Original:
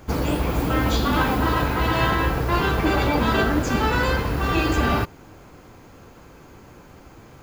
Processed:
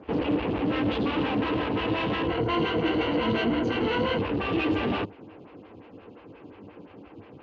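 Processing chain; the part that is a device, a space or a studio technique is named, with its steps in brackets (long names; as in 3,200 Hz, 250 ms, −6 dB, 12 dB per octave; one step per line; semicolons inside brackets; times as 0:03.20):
vibe pedal into a guitar amplifier (phaser with staggered stages 5.7 Hz; tube saturation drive 30 dB, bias 0.7; loudspeaker in its box 76–3,800 Hz, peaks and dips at 100 Hz +8 dB, 200 Hz +6 dB, 300 Hz +8 dB, 460 Hz +6 dB, 1,400 Hz −4 dB, 2,800 Hz +9 dB)
0:02.27–0:04.19: EQ curve with evenly spaced ripples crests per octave 1.9, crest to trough 10 dB
level +2.5 dB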